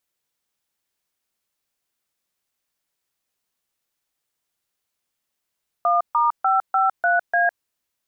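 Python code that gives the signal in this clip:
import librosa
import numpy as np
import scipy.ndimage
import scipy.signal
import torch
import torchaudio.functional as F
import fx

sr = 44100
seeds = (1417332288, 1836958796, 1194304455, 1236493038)

y = fx.dtmf(sr, digits='1*553A', tone_ms=157, gap_ms=140, level_db=-18.0)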